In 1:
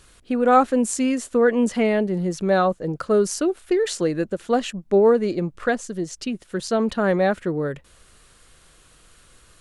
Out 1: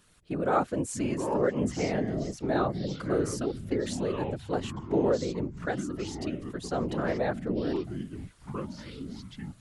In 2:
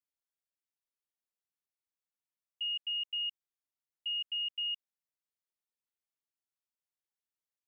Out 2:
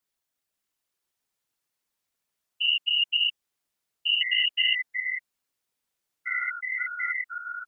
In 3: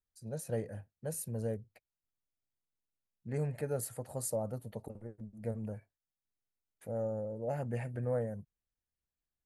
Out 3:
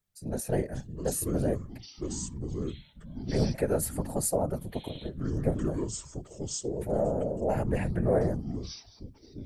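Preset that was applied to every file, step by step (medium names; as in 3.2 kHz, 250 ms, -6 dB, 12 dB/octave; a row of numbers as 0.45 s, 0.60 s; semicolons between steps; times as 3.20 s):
whisper effect; ever faster or slower copies 524 ms, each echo -6 st, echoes 3, each echo -6 dB; peak normalisation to -12 dBFS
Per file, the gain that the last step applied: -10.0 dB, +10.5 dB, +8.0 dB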